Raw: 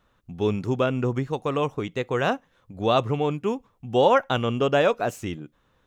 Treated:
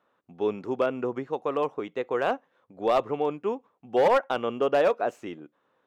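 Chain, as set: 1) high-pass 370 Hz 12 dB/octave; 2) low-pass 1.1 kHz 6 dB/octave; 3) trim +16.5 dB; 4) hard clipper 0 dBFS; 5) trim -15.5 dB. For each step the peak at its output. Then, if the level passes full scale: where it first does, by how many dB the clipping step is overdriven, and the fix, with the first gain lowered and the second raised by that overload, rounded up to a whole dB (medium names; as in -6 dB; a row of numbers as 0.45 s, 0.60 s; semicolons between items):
-7.0 dBFS, -9.0 dBFS, +7.5 dBFS, 0.0 dBFS, -15.5 dBFS; step 3, 7.5 dB; step 3 +8.5 dB, step 5 -7.5 dB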